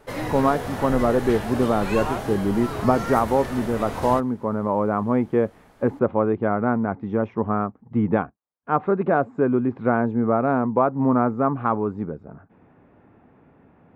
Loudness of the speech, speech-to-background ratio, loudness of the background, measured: -22.5 LUFS, 8.0 dB, -30.5 LUFS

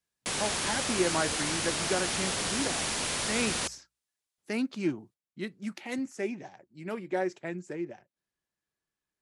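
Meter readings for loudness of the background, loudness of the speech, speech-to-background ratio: -30.0 LUFS, -34.5 LUFS, -4.5 dB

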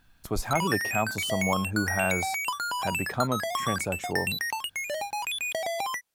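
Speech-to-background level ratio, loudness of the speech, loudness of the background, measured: -1.0 dB, -31.0 LUFS, -30.0 LUFS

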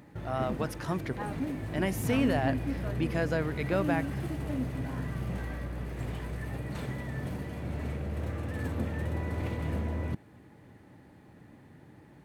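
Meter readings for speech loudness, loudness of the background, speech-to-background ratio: -32.5 LUFS, -35.0 LUFS, 2.5 dB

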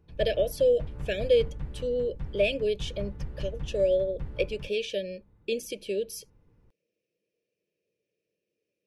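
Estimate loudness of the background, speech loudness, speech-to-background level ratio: -41.0 LUFS, -29.0 LUFS, 12.0 dB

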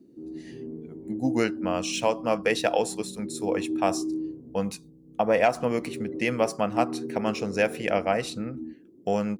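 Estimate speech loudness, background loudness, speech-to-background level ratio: -27.5 LUFS, -35.5 LUFS, 8.0 dB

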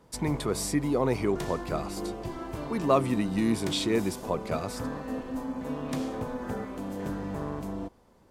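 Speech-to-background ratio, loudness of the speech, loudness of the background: 7.5 dB, -29.0 LUFS, -36.5 LUFS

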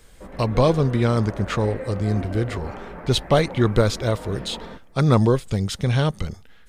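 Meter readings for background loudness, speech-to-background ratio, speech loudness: -36.0 LUFS, 14.0 dB, -22.0 LUFS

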